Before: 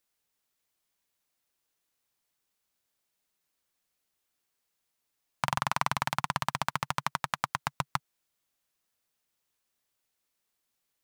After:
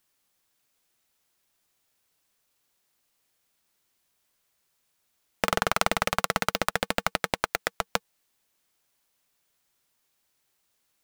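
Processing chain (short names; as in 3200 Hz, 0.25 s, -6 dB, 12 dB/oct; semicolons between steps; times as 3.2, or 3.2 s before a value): in parallel at +2 dB: limiter -15 dBFS, peak gain reduction 7.5 dB; 7.43–7.86 on the sum: HPF 360 Hz 6 dB/oct; polarity switched at an audio rate 330 Hz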